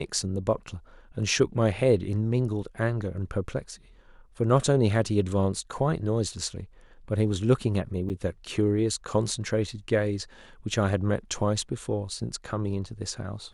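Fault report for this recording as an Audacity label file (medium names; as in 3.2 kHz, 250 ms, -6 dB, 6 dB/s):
8.090000	8.100000	dropout 8.6 ms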